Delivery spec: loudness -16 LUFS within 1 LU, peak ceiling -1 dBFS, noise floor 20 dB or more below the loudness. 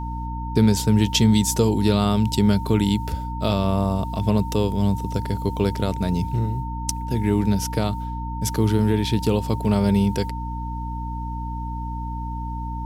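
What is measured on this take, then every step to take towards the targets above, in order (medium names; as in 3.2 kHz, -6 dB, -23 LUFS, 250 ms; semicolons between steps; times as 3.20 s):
hum 60 Hz; highest harmonic 300 Hz; hum level -27 dBFS; steady tone 910 Hz; tone level -32 dBFS; loudness -22.5 LUFS; peak level -3.5 dBFS; loudness target -16.0 LUFS
-> hum notches 60/120/180/240/300 Hz; band-stop 910 Hz, Q 30; trim +6.5 dB; peak limiter -1 dBFS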